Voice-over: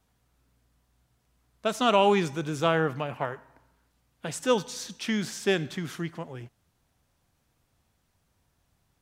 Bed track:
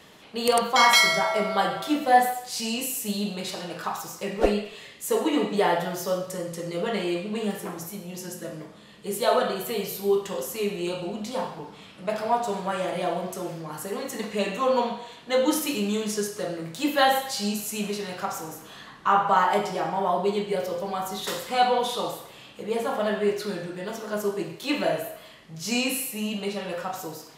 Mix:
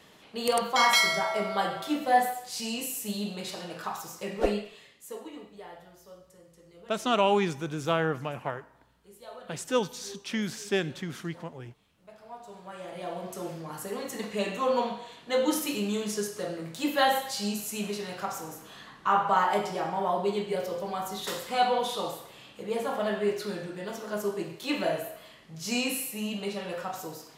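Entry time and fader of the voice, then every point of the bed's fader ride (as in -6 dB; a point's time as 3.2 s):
5.25 s, -2.5 dB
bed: 4.55 s -4.5 dB
5.52 s -23.5 dB
12.16 s -23.5 dB
13.44 s -3.5 dB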